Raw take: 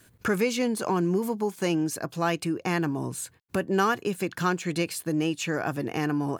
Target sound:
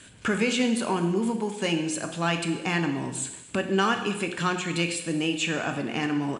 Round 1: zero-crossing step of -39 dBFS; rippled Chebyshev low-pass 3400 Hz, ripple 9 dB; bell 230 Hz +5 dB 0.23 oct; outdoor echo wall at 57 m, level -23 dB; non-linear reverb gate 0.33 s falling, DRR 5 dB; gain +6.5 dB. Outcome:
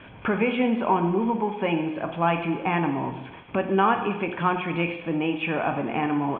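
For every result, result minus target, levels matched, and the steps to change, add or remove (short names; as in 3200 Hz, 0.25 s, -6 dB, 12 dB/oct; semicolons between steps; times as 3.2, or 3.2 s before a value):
4000 Hz band -9.5 dB; zero-crossing step: distortion +9 dB
change: rippled Chebyshev low-pass 10000 Hz, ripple 9 dB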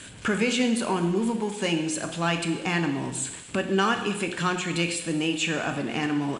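zero-crossing step: distortion +9 dB
change: zero-crossing step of -48 dBFS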